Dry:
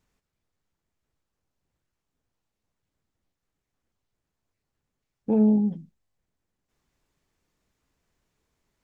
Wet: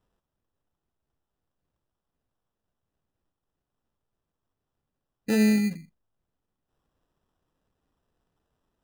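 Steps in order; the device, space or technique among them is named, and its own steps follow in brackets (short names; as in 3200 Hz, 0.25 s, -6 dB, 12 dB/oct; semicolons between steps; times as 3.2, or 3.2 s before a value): crushed at another speed (playback speed 0.5×; sample-and-hold 40×; playback speed 2×); gain -1.5 dB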